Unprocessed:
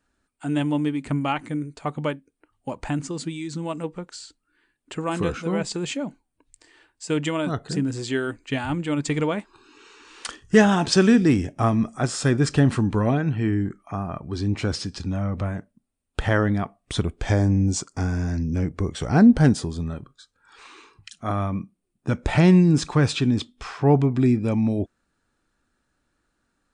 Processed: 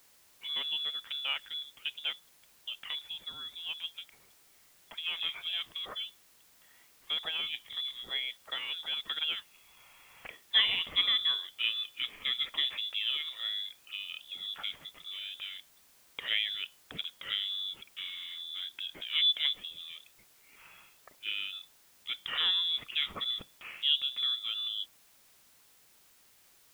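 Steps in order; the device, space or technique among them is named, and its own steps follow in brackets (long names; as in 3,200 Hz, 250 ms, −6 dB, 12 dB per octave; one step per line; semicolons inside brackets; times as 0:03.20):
scrambled radio voice (band-pass filter 310–2,900 Hz; voice inversion scrambler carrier 3,700 Hz; white noise bed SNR 26 dB)
level −8 dB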